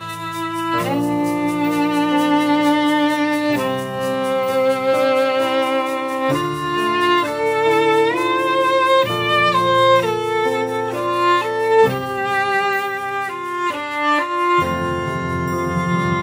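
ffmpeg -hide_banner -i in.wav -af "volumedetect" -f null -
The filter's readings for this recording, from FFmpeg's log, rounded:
mean_volume: -17.8 dB
max_volume: -3.8 dB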